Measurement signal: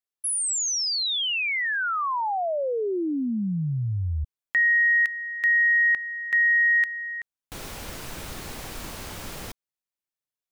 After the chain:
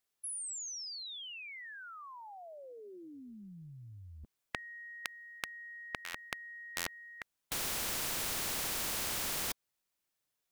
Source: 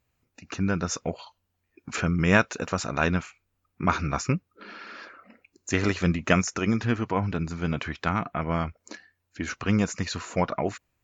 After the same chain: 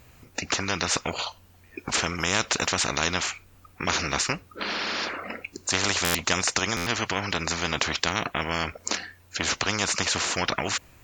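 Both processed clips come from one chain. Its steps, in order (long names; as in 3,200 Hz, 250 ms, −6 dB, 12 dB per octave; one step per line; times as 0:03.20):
buffer that repeats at 0:06.04/0:06.76, samples 512, times 8
every bin compressed towards the loudest bin 4 to 1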